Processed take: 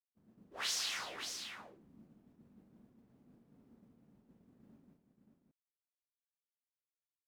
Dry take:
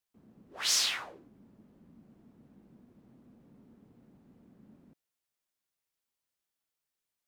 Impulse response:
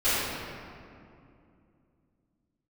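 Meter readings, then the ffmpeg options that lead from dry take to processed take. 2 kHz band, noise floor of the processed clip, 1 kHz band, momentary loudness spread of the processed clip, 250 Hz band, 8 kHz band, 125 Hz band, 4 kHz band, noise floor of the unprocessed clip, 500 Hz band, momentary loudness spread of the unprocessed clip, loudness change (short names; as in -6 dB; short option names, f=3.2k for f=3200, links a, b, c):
-4.5 dB, under -85 dBFS, -3.0 dB, 19 LU, -4.5 dB, -9.0 dB, -5.0 dB, -7.5 dB, under -85 dBFS, -2.0 dB, 9 LU, -10.0 dB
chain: -af "agate=range=-33dB:threshold=-53dB:ratio=3:detection=peak,acompressor=threshold=-34dB:ratio=5,aecho=1:1:40|197|579:0.501|0.335|0.501,volume=-2dB"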